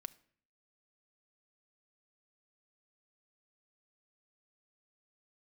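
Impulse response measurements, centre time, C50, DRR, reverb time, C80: 2 ms, 20.5 dB, 9.5 dB, 0.55 s, 24.0 dB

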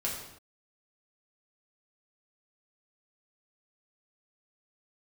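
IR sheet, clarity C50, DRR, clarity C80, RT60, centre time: 3.5 dB, -4.5 dB, 6.0 dB, not exponential, 46 ms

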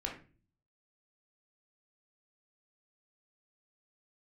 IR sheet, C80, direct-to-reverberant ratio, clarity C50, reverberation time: 12.5 dB, -1.0 dB, 7.0 dB, 0.35 s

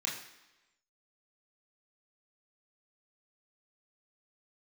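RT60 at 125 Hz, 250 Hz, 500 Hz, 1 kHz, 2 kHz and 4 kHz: 0.85, 0.95, 1.0, 1.0, 1.1, 1.0 s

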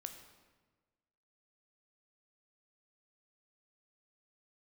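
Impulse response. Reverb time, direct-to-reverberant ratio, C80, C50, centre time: 1.4 s, 5.5 dB, 9.5 dB, 8.0 dB, 23 ms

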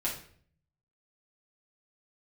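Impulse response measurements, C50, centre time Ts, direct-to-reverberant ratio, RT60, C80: 6.5 dB, 27 ms, -7.0 dB, 0.55 s, 11.5 dB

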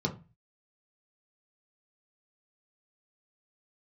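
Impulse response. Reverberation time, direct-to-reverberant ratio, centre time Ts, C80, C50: 0.30 s, 0.0 dB, 11 ms, 20.0 dB, 14.0 dB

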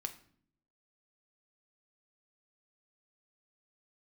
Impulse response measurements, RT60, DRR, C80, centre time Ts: 0.55 s, 6.0 dB, 17.0 dB, 8 ms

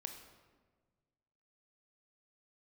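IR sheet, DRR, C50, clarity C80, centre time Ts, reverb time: 4.5 dB, 6.5 dB, 8.5 dB, 28 ms, 1.5 s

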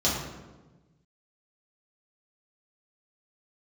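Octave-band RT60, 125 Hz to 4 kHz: 1.9, 1.5, 1.3, 1.1, 0.90, 0.75 s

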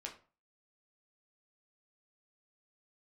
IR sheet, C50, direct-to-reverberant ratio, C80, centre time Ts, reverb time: 11.0 dB, -0.5 dB, 16.0 dB, 16 ms, 0.40 s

